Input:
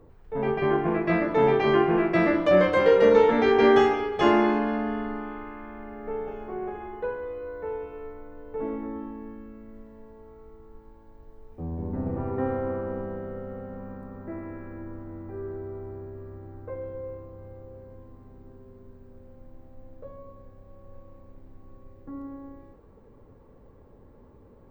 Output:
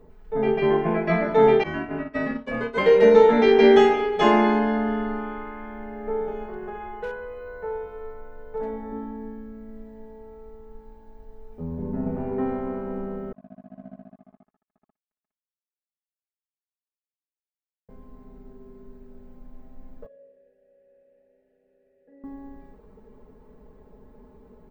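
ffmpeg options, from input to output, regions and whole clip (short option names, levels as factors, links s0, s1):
-filter_complex "[0:a]asettb=1/sr,asplit=3[s0][s1][s2];[s0]atrim=end=1.634[s3];[s1]atrim=start=1.63:end=2.78,asetpts=PTS-STARTPTS,afade=t=in:d=0.004:c=qsin,afade=t=out:st=1.146:d=0.004:c=qsin,agate=range=0.0224:threshold=0.158:ratio=3:release=100:detection=peak,acompressor=threshold=0.0631:ratio=2:attack=3.2:release=140:knee=1:detection=peak,afreqshift=-63[s4];[s2]atrim=start=2.776[s5];[s3][s4]acrossfade=d=0.004:c1=hsin:c2=qsin[s6];[s6][s5]acrossfade=d=0.004:c1=qsin:c2=hsin,asettb=1/sr,asplit=3[s7][s8][s9];[s7]atrim=end=6.454[s10];[s8]atrim=start=6.45:end=8.92,asetpts=PTS-STARTPTS,afade=t=in:d=0.004:c=qsin,afade=t=out:st=2.466:d=0.004:c=qsin,equalizer=f=300:t=o:w=0.73:g=-10,volume=21.1,asoftclip=hard,volume=0.0473[s11];[s9]atrim=start=8.916[s12];[s10][s11]acrossfade=d=0.004:c1=hsin:c2=qsin[s13];[s13][s12]acrossfade=d=0.004:c1=qsin:c2=hsin,asettb=1/sr,asplit=3[s14][s15][s16];[s14]atrim=end=13.324[s17];[s15]atrim=start=13.32:end=17.89,asetpts=PTS-STARTPTS,afade=t=in:d=0.004:c=qsin,afade=t=out:st=4.566:d=0.004:c=qsin,asuperpass=centerf=230:order=20:qfactor=1.8,acrusher=bits=5:mix=0:aa=0.5[s18];[s16]atrim=start=17.886[s19];[s17][s18]acrossfade=d=0.004:c1=hsin:c2=qsin[s20];[s20][s19]acrossfade=d=0.004:c1=qsin:c2=hsin,asettb=1/sr,asplit=3[s21][s22][s23];[s21]atrim=end=20.064[s24];[s22]atrim=start=20.06:end=22.24,asetpts=PTS-STARTPTS,afade=t=in:d=0.004:c=qsin,afade=t=out:st=2.176:d=0.004:c=qsin,asplit=3[s25][s26][s27];[s25]bandpass=f=530:t=q:w=8,volume=1[s28];[s26]bandpass=f=1840:t=q:w=8,volume=0.501[s29];[s27]bandpass=f=2480:t=q:w=8,volume=0.355[s30];[s28][s29][s30]amix=inputs=3:normalize=0,asplit=2[s31][s32];[s32]adelay=43,volume=0.501[s33];[s31][s33]amix=inputs=2:normalize=0,atrim=end_sample=96138[s34];[s23]atrim=start=22.236[s35];[s24][s34]acrossfade=d=0.004:c1=hsin:c2=qsin[s36];[s36][s35]acrossfade=d=0.004:c1=qsin:c2=hsin,bandreject=f=1100:w=19,aecho=1:1:4.7:0.86"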